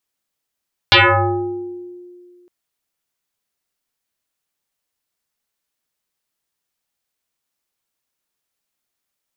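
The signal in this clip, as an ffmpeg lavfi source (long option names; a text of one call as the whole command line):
ffmpeg -f lavfi -i "aevalsrc='0.531*pow(10,-3*t/2.19)*sin(2*PI*355*t+9.3*pow(10,-3*t/1.2)*sin(2*PI*1.28*355*t))':duration=1.56:sample_rate=44100" out.wav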